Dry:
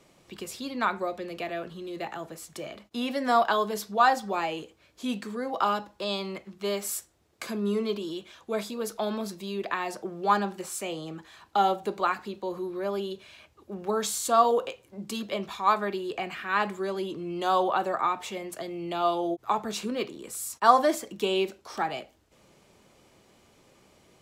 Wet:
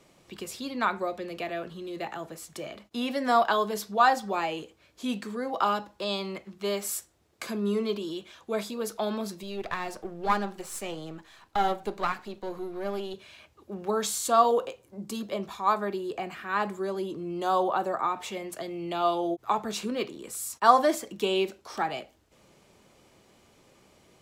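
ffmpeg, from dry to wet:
-filter_complex "[0:a]asettb=1/sr,asplit=3[a][b][c];[a]atrim=end=9.434[d];[b]atrim=start=9.43:end=13.14,asetpts=PTS-STARTPTS,afade=t=in:d=0.004:c=qsin,afade=t=out:st=3.706:d=0.004:c=qsin,aeval=exprs='if(lt(val(0),0),0.447*val(0),val(0))':c=same[e];[c]atrim=start=13.136[f];[d][e]acrossfade=d=0.004:c1=hsin:c2=qsin[g];[g][f]acrossfade=d=0.004:c1=qsin:c2=hsin,asettb=1/sr,asplit=3[h][i][j];[h]atrim=end=14.654[k];[i]atrim=start=14.65:end=18.16,asetpts=PTS-STARTPTS,afade=t=in:d=0.004:c=qsin,afade=t=out:st=3.506:d=0.004:c=qsin,equalizer=f=2.7k:t=o:w=1.7:g=-6[l];[j]atrim=start=18.156[m];[k][l]acrossfade=d=0.004:c1=hsin:c2=qsin[n];[n][m]acrossfade=d=0.004:c1=qsin:c2=hsin"

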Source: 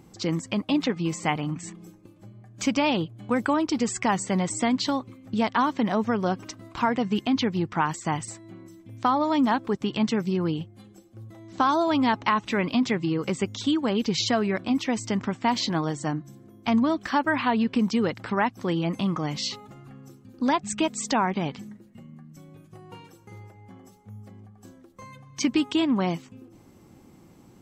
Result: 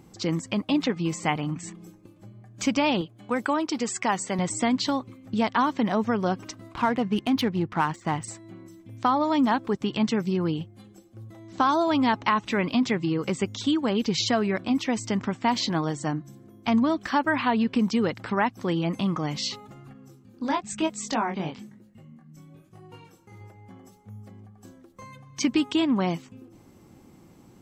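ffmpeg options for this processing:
-filter_complex "[0:a]asettb=1/sr,asplit=3[a][b][c];[a]atrim=end=3.014[d];[b]atrim=start=3.01:end=4.39,asetpts=PTS-STARTPTS,afade=t=in:d=0.004:c=qsin,afade=t=out:st=1.376:d=0.004:c=qsin,highpass=f=310:p=1[e];[c]atrim=start=4.386[f];[d][e]acrossfade=d=0.004:c1=hsin:c2=qsin[g];[g][f]acrossfade=d=0.004:c1=qsin:c2=hsin,asettb=1/sr,asplit=3[h][i][j];[h]atrim=end=6.744[k];[i]atrim=start=6.74:end=8.24,asetpts=PTS-STARTPTS,afade=t=in:d=0.004:c=qsin,afade=t=out:st=1.496:d=0.004:c=qsin,adynamicsmooth=sensitivity=5.5:basefreq=2.7k[l];[j]atrim=start=8.236[m];[k][l]acrossfade=d=0.004:c1=hsin:c2=qsin[n];[n][m]acrossfade=d=0.004:c1=qsin:c2=hsin,asettb=1/sr,asplit=3[o][p][q];[o]atrim=end=19.934[r];[p]atrim=start=19.93:end=23.41,asetpts=PTS-STARTPTS,afade=t=in:d=0.004:c=qsin,afade=t=out:st=3.476:d=0.004:c=qsin,flanger=delay=18.5:depth=7.6:speed=1[s];[q]atrim=start=23.406[t];[r][s]acrossfade=d=0.004:c1=hsin:c2=qsin[u];[u][t]acrossfade=d=0.004:c1=qsin:c2=hsin"

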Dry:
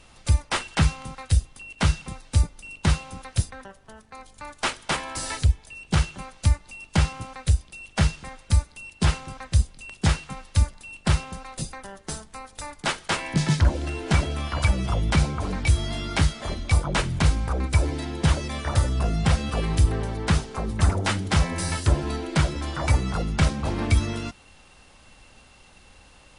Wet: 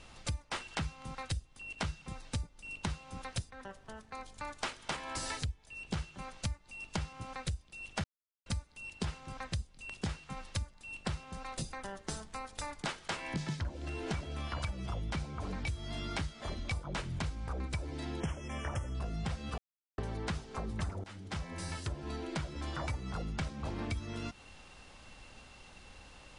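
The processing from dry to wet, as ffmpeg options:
-filter_complex "[0:a]asettb=1/sr,asplit=3[a][b][c];[a]atrim=end=18.204[d];[b]atrim=start=18.2:end=18.95,asetpts=PTS-STARTPTS,afade=t=in:d=0.004:c=qsin,afade=t=out:st=0.746:d=0.004:c=qsin,asuperstop=centerf=4200:order=20:qfactor=2.3[e];[c]atrim=start=18.946[f];[d][e]acrossfade=d=0.004:c1=hsin:c2=qsin[g];[g][f]acrossfade=d=0.004:c1=qsin:c2=hsin,asplit=6[h][i][j][k][l][m];[h]atrim=end=8.04,asetpts=PTS-STARTPTS,afade=t=out:st=8.036:d=0.004:c=hsin[n];[i]atrim=start=8.04:end=8.46,asetpts=PTS-STARTPTS,volume=0[o];[j]atrim=start=8.46:end=19.58,asetpts=PTS-STARTPTS,afade=t=in:d=0.004:c=hsin,afade=t=out:st=11.116:d=0.004:c=hsin[p];[k]atrim=start=19.58:end=19.98,asetpts=PTS-STARTPTS,volume=0[q];[l]atrim=start=19.98:end=21.04,asetpts=PTS-STARTPTS,afade=t=in:d=0.004:c=hsin,afade=t=out:st=1.056:d=0.004:c=hsin:silence=0.112202[r];[m]atrim=start=21.04,asetpts=PTS-STARTPTS,afade=t=in:d=2.43:silence=0.112202[s];[n][o][p][q][r][s]concat=n=6:v=0:a=1,lowpass=8.2k,acompressor=threshold=-33dB:ratio=6,volume=-2dB"

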